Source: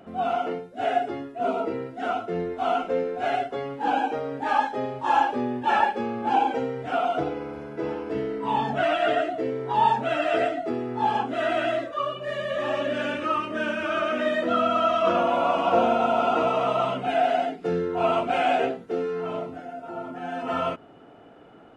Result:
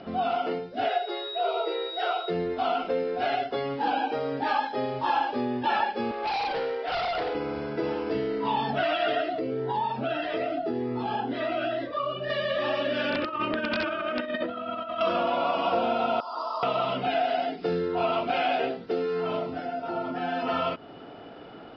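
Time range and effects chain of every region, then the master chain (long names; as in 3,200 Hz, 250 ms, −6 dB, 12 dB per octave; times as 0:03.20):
0:00.88–0:02.29: steady tone 3,800 Hz −46 dBFS + linear-phase brick-wall high-pass 330 Hz
0:06.11–0:07.35: high-pass filter 410 Hz 24 dB per octave + gain into a clipping stage and back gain 29.5 dB + high-frequency loss of the air 100 metres
0:09.39–0:12.30: high-shelf EQ 3,300 Hz −11.5 dB + downward compressor 2 to 1, threshold −26 dBFS + phaser whose notches keep moving one way rising 1.9 Hz
0:13.10–0:15.01: compressor whose output falls as the input rises −29 dBFS, ratio −0.5 + wrap-around overflow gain 16.5 dB + high-frequency loss of the air 280 metres
0:16.20–0:16.63: pair of resonant band-passes 2,300 Hz, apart 2.2 octaves + comb filter 3.3 ms, depth 38%
whole clip: Butterworth low-pass 5,200 Hz 96 dB per octave; bass and treble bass −1 dB, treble +15 dB; downward compressor 2.5 to 1, threshold −33 dBFS; level +5.5 dB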